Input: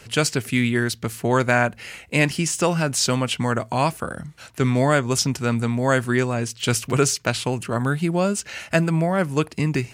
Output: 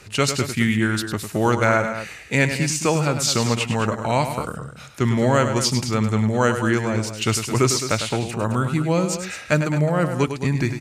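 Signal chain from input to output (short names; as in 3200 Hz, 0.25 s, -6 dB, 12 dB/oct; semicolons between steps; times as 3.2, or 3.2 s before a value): on a send: tapped delay 93/196 ms -9/-11 dB; on the sum: speed mistake 48 kHz file played as 44.1 kHz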